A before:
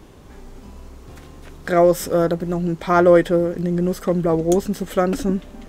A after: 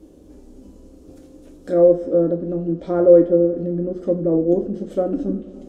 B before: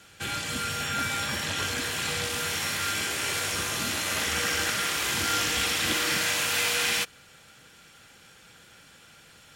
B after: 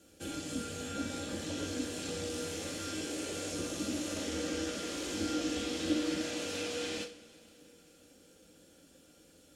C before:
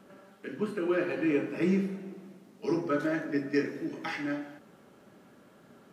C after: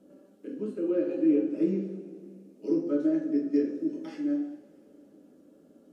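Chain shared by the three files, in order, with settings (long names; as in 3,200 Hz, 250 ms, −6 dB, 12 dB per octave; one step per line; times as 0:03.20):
treble cut that deepens with the level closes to 1,600 Hz, closed at −16.5 dBFS
octave-band graphic EQ 125/250/500/1,000/2,000/4,000 Hz −10/+9/+7/−11/−11/−4 dB
coupled-rooms reverb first 0.34 s, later 3.4 s, from −22 dB, DRR 2.5 dB
level −7 dB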